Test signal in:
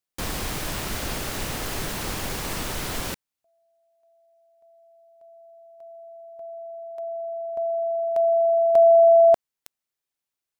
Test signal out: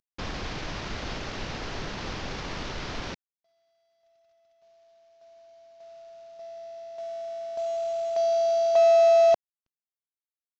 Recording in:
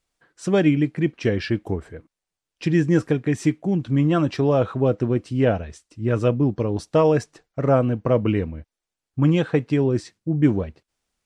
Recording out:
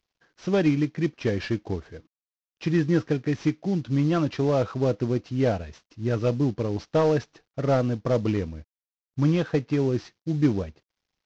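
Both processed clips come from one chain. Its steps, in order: CVSD 32 kbps; gain -3.5 dB

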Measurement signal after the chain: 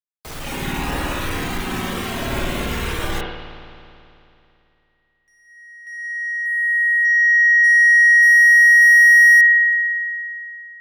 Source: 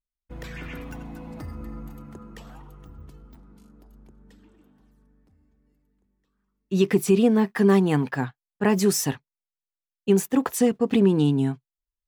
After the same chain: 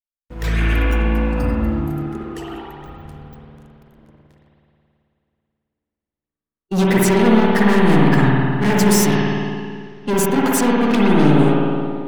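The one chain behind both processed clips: sample leveller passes 5; spring tank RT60 2.8 s, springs 54 ms, chirp 80 ms, DRR -5 dB; spectral noise reduction 7 dB; gain -7 dB

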